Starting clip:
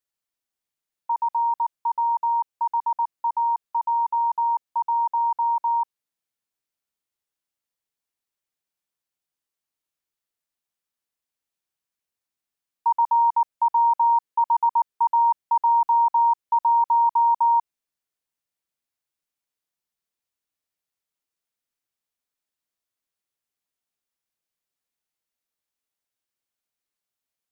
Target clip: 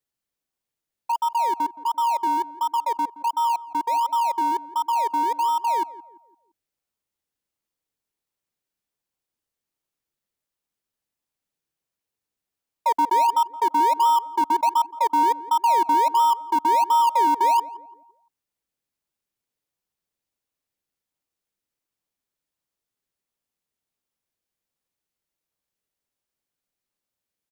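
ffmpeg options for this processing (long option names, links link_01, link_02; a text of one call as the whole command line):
ffmpeg -i in.wav -filter_complex "[0:a]bandreject=frequency=680:width=12,asplit=2[link_01][link_02];[link_02]acrusher=samples=28:mix=1:aa=0.000001:lfo=1:lforange=16.8:lforate=1.4,volume=-11dB[link_03];[link_01][link_03]amix=inputs=2:normalize=0,asplit=2[link_04][link_05];[link_05]adelay=171,lowpass=frequency=950:poles=1,volume=-15dB,asplit=2[link_06][link_07];[link_07]adelay=171,lowpass=frequency=950:poles=1,volume=0.46,asplit=2[link_08][link_09];[link_09]adelay=171,lowpass=frequency=950:poles=1,volume=0.46,asplit=2[link_10][link_11];[link_11]adelay=171,lowpass=frequency=950:poles=1,volume=0.46[link_12];[link_04][link_06][link_08][link_10][link_12]amix=inputs=5:normalize=0" out.wav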